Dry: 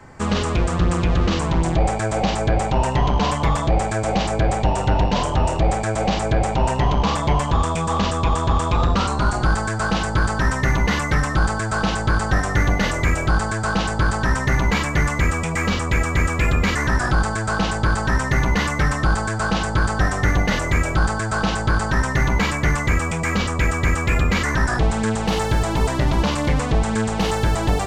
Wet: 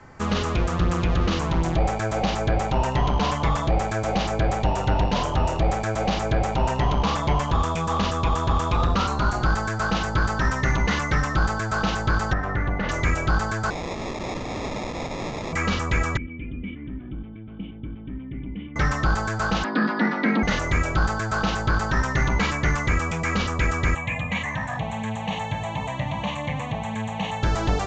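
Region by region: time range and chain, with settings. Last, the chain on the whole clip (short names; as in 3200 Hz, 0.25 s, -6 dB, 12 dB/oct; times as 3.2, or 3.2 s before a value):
12.33–12.89 LPF 2100 Hz + compressor 2:1, threshold -19 dBFS
13.7–15.53 low shelf 160 Hz -7.5 dB + sample-rate reducer 1500 Hz + wrapped overs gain 21.5 dB
16.17–18.76 vocal tract filter i + air absorption 170 m
19.64–20.43 elliptic low-pass 4400 Hz, stop band 60 dB + frequency shift +160 Hz
23.95–27.43 HPF 97 Hz 24 dB/oct + fixed phaser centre 1400 Hz, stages 6
whole clip: elliptic low-pass 6800 Hz, stop band 60 dB; bell 1300 Hz +3 dB 0.24 oct; gain -2.5 dB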